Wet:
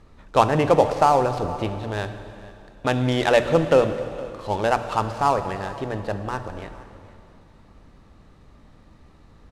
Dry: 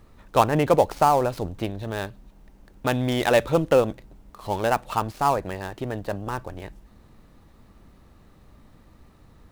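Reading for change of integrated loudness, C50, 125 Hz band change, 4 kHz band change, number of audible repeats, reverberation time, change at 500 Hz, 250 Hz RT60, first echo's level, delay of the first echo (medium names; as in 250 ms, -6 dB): +1.5 dB, 9.5 dB, +2.0 dB, +2.0 dB, 1, 2.6 s, +2.0 dB, 2.6 s, -20.0 dB, 465 ms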